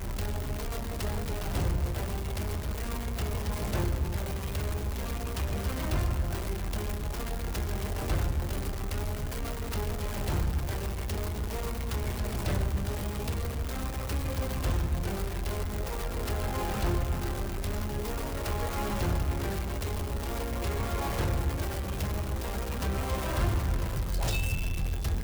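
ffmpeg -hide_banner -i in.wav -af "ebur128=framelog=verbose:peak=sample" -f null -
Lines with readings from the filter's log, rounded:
Integrated loudness:
  I:         -32.6 LUFS
  Threshold: -42.6 LUFS
Loudness range:
  LRA:         1.8 LU
  Threshold: -52.7 LUFS
  LRA low:   -33.5 LUFS
  LRA high:  -31.6 LUFS
Sample peak:
  Peak:      -16.5 dBFS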